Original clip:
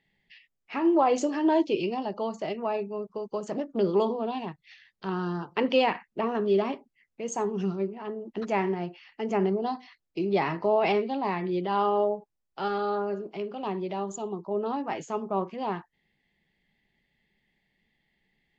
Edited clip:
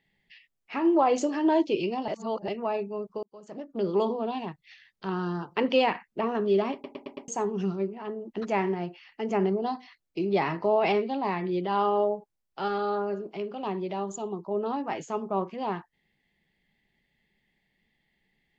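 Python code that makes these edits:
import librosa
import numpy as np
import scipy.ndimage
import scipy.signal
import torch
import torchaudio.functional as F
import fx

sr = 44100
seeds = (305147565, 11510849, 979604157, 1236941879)

y = fx.edit(x, sr, fx.reverse_span(start_s=2.08, length_s=0.4),
    fx.fade_in_span(start_s=3.23, length_s=0.87),
    fx.stutter_over(start_s=6.73, slice_s=0.11, count=5), tone=tone)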